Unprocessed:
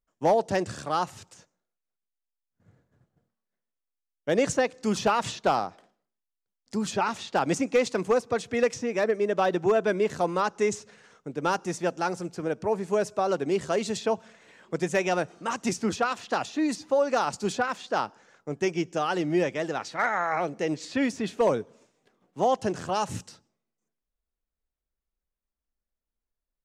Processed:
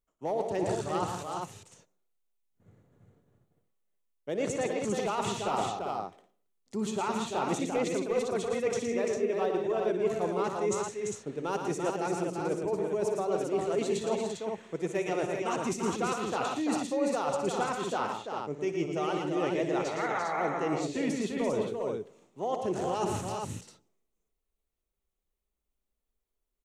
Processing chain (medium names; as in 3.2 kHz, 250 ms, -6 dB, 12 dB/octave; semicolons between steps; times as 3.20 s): graphic EQ with 31 bands 400 Hz +6 dB, 1.6 kHz -7 dB, 5 kHz -8 dB; reverse; compression, threshold -29 dBFS, peak gain reduction 14.5 dB; reverse; multi-tap echo 60/115/160/177/342/401 ms -13/-6/-11.5/-17/-5.5/-5 dB